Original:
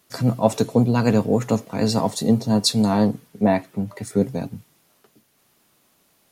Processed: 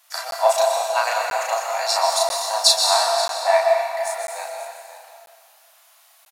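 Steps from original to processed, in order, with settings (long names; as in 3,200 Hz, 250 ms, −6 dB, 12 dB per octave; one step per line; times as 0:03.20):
double-tracking delay 35 ms −2 dB
in parallel at −10.5 dB: soft clipping −9.5 dBFS, distortion −17 dB
on the sum: Butterworth high-pass 640 Hz 72 dB per octave
single-tap delay 533 ms −14 dB
on a send at −1 dB: convolution reverb RT60 1.9 s, pre-delay 116 ms
on the sum: regular buffer underruns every 0.99 s, samples 512, zero, from 0:00.31
level +2 dB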